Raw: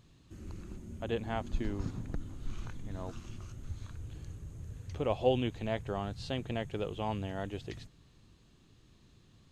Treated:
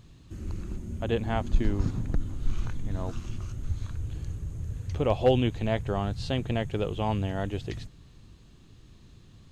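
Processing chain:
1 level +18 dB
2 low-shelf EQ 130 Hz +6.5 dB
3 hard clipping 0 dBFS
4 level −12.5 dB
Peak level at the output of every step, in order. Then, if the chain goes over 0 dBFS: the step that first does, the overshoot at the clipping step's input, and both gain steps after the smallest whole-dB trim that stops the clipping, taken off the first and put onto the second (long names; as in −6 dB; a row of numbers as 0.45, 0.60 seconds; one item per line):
+3.5, +4.0, 0.0, −12.5 dBFS
step 1, 4.0 dB
step 1 +14 dB, step 4 −8.5 dB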